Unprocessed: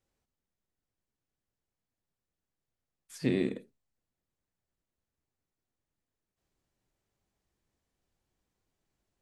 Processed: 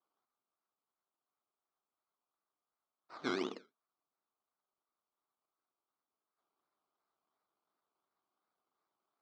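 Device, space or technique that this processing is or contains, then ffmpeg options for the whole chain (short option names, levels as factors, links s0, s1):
circuit-bent sampling toy: -af "acrusher=samples=19:mix=1:aa=0.000001:lfo=1:lforange=11.4:lforate=2.8,highpass=470,equalizer=f=520:t=q:w=4:g=-7,equalizer=f=1200:t=q:w=4:g=7,equalizer=f=1800:t=q:w=4:g=-9,equalizer=f=2700:t=q:w=4:g=-8,lowpass=f=4800:w=0.5412,lowpass=f=4800:w=1.3066"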